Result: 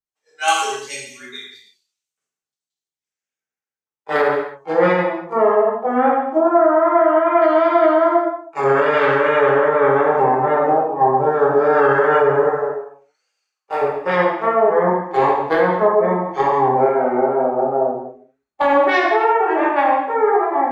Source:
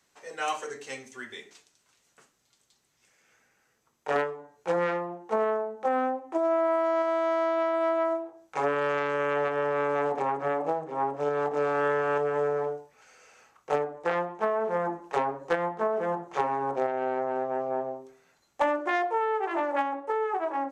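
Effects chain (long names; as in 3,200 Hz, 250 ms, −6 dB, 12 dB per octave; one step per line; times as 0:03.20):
noise reduction from a noise print of the clip's start 14 dB
0:12.43–0:13.82: high-pass filter 640 Hz 6 dB per octave
pitch vibrato 2.5 Hz 94 cents
0:06.46–0:07.42: Chebyshev low-pass filter 2,700 Hz, order 4
reverb whose tail is shaped and stops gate 360 ms falling, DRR −4 dB
boost into a limiter +12.5 dB
multiband upward and downward expander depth 70%
level −4.5 dB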